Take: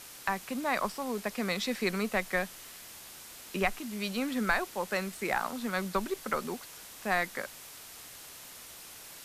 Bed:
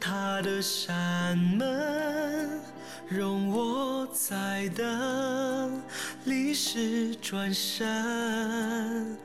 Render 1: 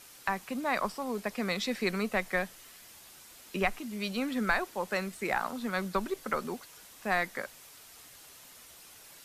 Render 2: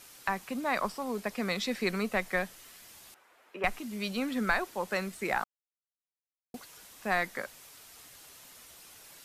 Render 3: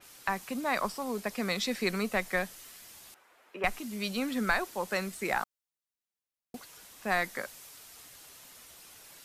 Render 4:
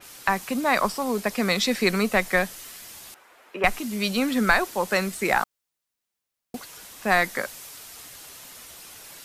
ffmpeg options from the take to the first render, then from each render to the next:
ffmpeg -i in.wav -af "afftdn=noise_reduction=6:noise_floor=-49" out.wav
ffmpeg -i in.wav -filter_complex "[0:a]asettb=1/sr,asplit=3[link_01][link_02][link_03];[link_01]atrim=end=3.144[link_04];[link_02]atrim=start=3.14:end=3.64,asetpts=PTS-STARTPTS,afade=type=in:duration=0.004:curve=qsin,afade=type=out:start_time=0.496:duration=0.004:curve=qsin,acrossover=split=380 2200:gain=0.0794 1 0.0891[link_05][link_06][link_07];[link_05][link_06][link_07]amix=inputs=3:normalize=0[link_08];[link_03]atrim=start=3.636[link_09];[link_04][link_08]acrossfade=duration=0.004:curve1=hsin:curve2=qsin[link_10];[link_10][link_09]acrossfade=duration=0.004:curve1=qsin:curve2=hsin,asplit=3[link_11][link_12][link_13];[link_11]atrim=end=5.44,asetpts=PTS-STARTPTS,afade=type=out:start_time=5.436:duration=0.004:curve=hsin[link_14];[link_12]atrim=start=5.44:end=6.54,asetpts=PTS-STARTPTS,volume=0[link_15];[link_13]atrim=start=6.54,asetpts=PTS-STARTPTS,afade=type=in:duration=0.004:curve=hsin[link_16];[link_14][link_15][link_16]concat=n=3:v=0:a=1" out.wav
ffmpeg -i in.wav -af "adynamicequalizer=threshold=0.00447:dfrequency=4000:dqfactor=0.7:tfrequency=4000:tqfactor=0.7:attack=5:release=100:ratio=0.375:range=2:mode=boostabove:tftype=highshelf" out.wav
ffmpeg -i in.wav -af "volume=8.5dB" out.wav

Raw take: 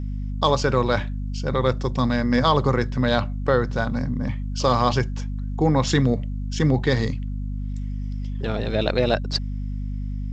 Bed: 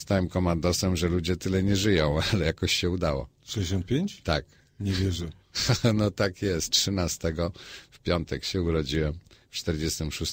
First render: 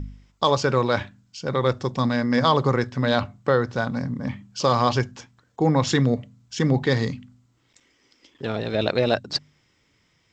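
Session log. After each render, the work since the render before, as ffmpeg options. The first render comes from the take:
ffmpeg -i in.wav -af "bandreject=frequency=50:width_type=h:width=4,bandreject=frequency=100:width_type=h:width=4,bandreject=frequency=150:width_type=h:width=4,bandreject=frequency=200:width_type=h:width=4,bandreject=frequency=250:width_type=h:width=4" out.wav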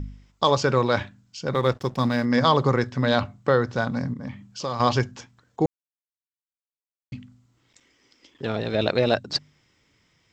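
ffmpeg -i in.wav -filter_complex "[0:a]asettb=1/sr,asplit=3[link_01][link_02][link_03];[link_01]atrim=end=1.544[link_04];[link_02]atrim=start=1.54:end=2.25,asetpts=PTS-STARTPTS,afade=type=in:duration=0.004:curve=qsin,afade=type=out:start_time=0.706:duration=0.004:curve=qsin,aeval=exprs='sgn(val(0))*max(abs(val(0))-0.00668,0)':channel_layout=same[link_05];[link_03]atrim=start=2.246[link_06];[link_04][link_05]acrossfade=duration=0.004:curve1=hsin:curve2=qsin[link_07];[link_07][link_06]acrossfade=duration=0.004:curve1=qsin:curve2=hsin,asettb=1/sr,asplit=3[link_08][link_09][link_10];[link_08]atrim=end=4.134[link_11];[link_09]atrim=start=4.13:end=4.8,asetpts=PTS-STARTPTS,afade=type=in:duration=0.004:curve=qsin,afade=type=out:start_time=0.666:duration=0.004:curve=qsin,acompressor=threshold=-40dB:ratio=1.5:attack=3.2:release=140:knee=1:detection=peak[link_12];[link_10]atrim=start=4.796[link_13];[link_11][link_12]acrossfade=duration=0.004:curve1=hsin:curve2=qsin[link_14];[link_14][link_13]acrossfade=duration=0.004:curve1=qsin:curve2=hsin,asplit=3[link_15][link_16][link_17];[link_15]atrim=end=5.66,asetpts=PTS-STARTPTS,afade=type=out:start_time=5.656:duration=0.004:curve=hsin[link_18];[link_16]atrim=start=5.66:end=7.12,asetpts=PTS-STARTPTS,volume=0[link_19];[link_17]atrim=start=7.12,asetpts=PTS-STARTPTS,afade=type=in:duration=0.004:curve=hsin[link_20];[link_18][link_19][link_20]concat=n=3:v=0:a=1" out.wav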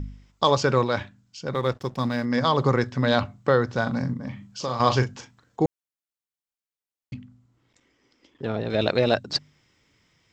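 ffmpeg -i in.wav -filter_complex "[0:a]asettb=1/sr,asplit=3[link_01][link_02][link_03];[link_01]atrim=end=3.824[link_04];[link_02]atrim=start=3.82:end=5.63,asetpts=PTS-STARTPTS,afade=type=in:duration=0.004:curve=qsin,afade=type=out:start_time=1.806:duration=0.004:curve=qsin,asplit=2[link_05][link_06];[link_06]adelay=39,volume=-9dB[link_07];[link_05][link_07]amix=inputs=2:normalize=0,atrim=end_sample=79821[link_08];[link_03]atrim=start=5.626[link_09];[link_04][link_08]acrossfade=duration=0.004:curve1=hsin:curve2=qsin[link_10];[link_10][link_09]acrossfade=duration=0.004:curve1=qsin:curve2=hsin,asettb=1/sr,asplit=3[link_11][link_12][link_13];[link_11]atrim=end=7.144[link_14];[link_12]atrim=start=7.14:end=8.7,asetpts=PTS-STARTPTS,afade=type=in:duration=0.004:curve=qsin,afade=type=out:start_time=1.556:duration=0.004:curve=qsin,highshelf=frequency=2000:gain=-9[link_15];[link_13]atrim=start=8.696[link_16];[link_14][link_15]acrossfade=duration=0.004:curve1=hsin:curve2=qsin[link_17];[link_17][link_16]acrossfade=duration=0.004:curve1=qsin:curve2=hsin,asplit=3[link_18][link_19][link_20];[link_18]atrim=end=0.842[link_21];[link_19]atrim=start=0.838:end=2.582,asetpts=PTS-STARTPTS,volume=-3dB[link_22];[link_20]atrim=start=2.578[link_23];[link_21][link_22]acrossfade=duration=0.004:curve1=hsin:curve2=hsin[link_24];[link_24][link_23]acrossfade=duration=0.004:curve1=hsin:curve2=hsin" out.wav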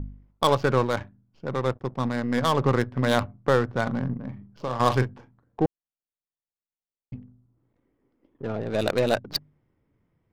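ffmpeg -i in.wav -af "aeval=exprs='if(lt(val(0),0),0.708*val(0),val(0))':channel_layout=same,adynamicsmooth=sensitivity=3:basefreq=860" out.wav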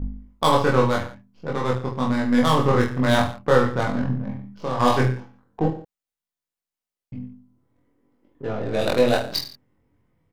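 ffmpeg -i in.wav -filter_complex "[0:a]asplit=2[link_01][link_02];[link_02]adelay=24,volume=-3dB[link_03];[link_01][link_03]amix=inputs=2:normalize=0,aecho=1:1:20|45|76.25|115.3|164.1:0.631|0.398|0.251|0.158|0.1" out.wav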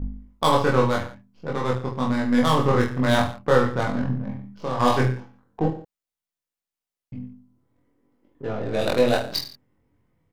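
ffmpeg -i in.wav -af "volume=-1dB" out.wav

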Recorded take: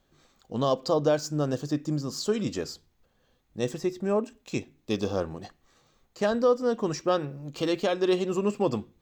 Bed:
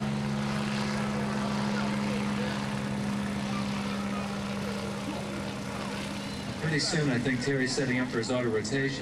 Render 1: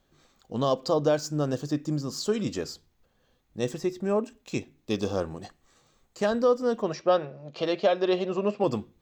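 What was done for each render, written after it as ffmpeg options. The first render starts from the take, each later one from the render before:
ffmpeg -i in.wav -filter_complex "[0:a]asettb=1/sr,asplit=3[link_01][link_02][link_03];[link_01]atrim=end=5.024[link_04];[link_02]atrim=start=5.02:end=6.22,asetpts=PTS-STARTPTS,afade=type=in:duration=0.004:curve=qsin,afade=type=out:start_time=1.196:duration=0.004:curve=qsin,equalizer=frequency=8000:width_type=o:width=0.43:gain=6.5[link_05];[link_03]atrim=start=6.216[link_06];[link_04][link_05]acrossfade=duration=0.004:curve1=hsin:curve2=qsin[link_07];[link_07][link_06]acrossfade=duration=0.004:curve1=qsin:curve2=hsin,asettb=1/sr,asplit=3[link_08][link_09][link_10];[link_08]atrim=end=6.824[link_11];[link_09]atrim=start=6.82:end=8.64,asetpts=PTS-STARTPTS,afade=type=in:duration=0.004:curve=qsin,afade=type=out:start_time=1.816:duration=0.004:curve=qsin,highpass=100,equalizer=frequency=130:width_type=q:width=4:gain=-8,equalizer=frequency=280:width_type=q:width=4:gain=-10,equalizer=frequency=630:width_type=q:width=4:gain=10,lowpass=frequency=5100:width=0.5412,lowpass=frequency=5100:width=1.3066[link_12];[link_10]atrim=start=8.636[link_13];[link_11][link_12]acrossfade=duration=0.004:curve1=hsin:curve2=qsin[link_14];[link_14][link_13]acrossfade=duration=0.004:curve1=qsin:curve2=hsin" out.wav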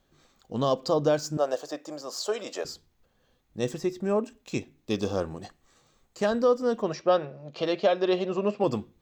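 ffmpeg -i in.wav -filter_complex "[0:a]asettb=1/sr,asplit=3[link_01][link_02][link_03];[link_01]atrim=end=1.374[link_04];[link_02]atrim=start=1.37:end=2.65,asetpts=PTS-STARTPTS,afade=type=in:duration=0.004:curve=qsin,afade=type=out:start_time=1.276:duration=0.004:curve=qsin,highpass=frequency=630:width_type=q:width=2.8[link_05];[link_03]atrim=start=2.646[link_06];[link_04][link_05]acrossfade=duration=0.004:curve1=hsin:curve2=qsin[link_07];[link_07][link_06]acrossfade=duration=0.004:curve1=qsin:curve2=hsin" out.wav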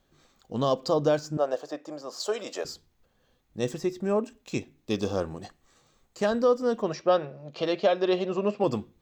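ffmpeg -i in.wav -filter_complex "[0:a]asettb=1/sr,asplit=3[link_01][link_02][link_03];[link_01]atrim=end=1.194[link_04];[link_02]atrim=start=1.19:end=2.2,asetpts=PTS-STARTPTS,afade=type=in:duration=0.004:curve=qsin,afade=type=out:start_time=1.006:duration=0.004:curve=qsin,highshelf=frequency=4600:gain=-10.5[link_05];[link_03]atrim=start=2.196[link_06];[link_04][link_05]acrossfade=duration=0.004:curve1=hsin:curve2=qsin[link_07];[link_07][link_06]acrossfade=duration=0.004:curve1=qsin:curve2=hsin" out.wav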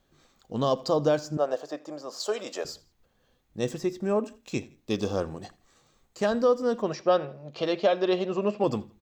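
ffmpeg -i in.wav -af "aecho=1:1:83|166:0.0794|0.0278" out.wav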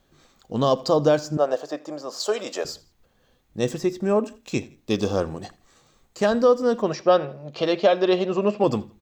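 ffmpeg -i in.wav -af "volume=5dB" out.wav

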